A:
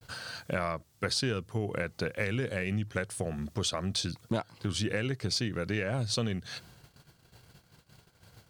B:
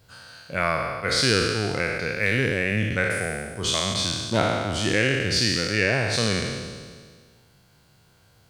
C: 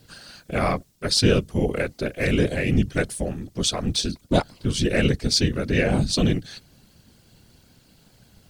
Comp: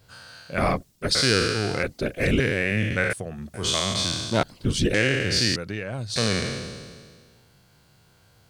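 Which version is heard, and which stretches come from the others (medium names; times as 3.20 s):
B
0.58–1.15 s: from C
1.83–2.40 s: from C
3.13–3.54 s: from A
4.43–4.94 s: from C
5.56–6.16 s: from A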